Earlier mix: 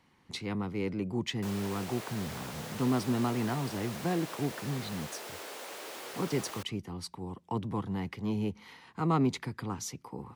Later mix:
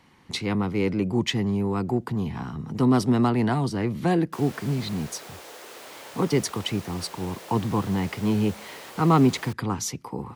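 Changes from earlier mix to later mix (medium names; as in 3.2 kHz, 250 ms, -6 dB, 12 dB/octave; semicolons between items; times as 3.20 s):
speech +9.0 dB; background: entry +2.90 s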